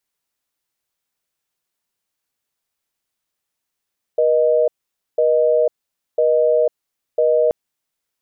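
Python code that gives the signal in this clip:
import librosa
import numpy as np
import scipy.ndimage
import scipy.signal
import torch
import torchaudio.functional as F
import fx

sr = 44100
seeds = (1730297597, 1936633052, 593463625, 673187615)

y = fx.call_progress(sr, length_s=3.33, kind='busy tone', level_db=-15.0)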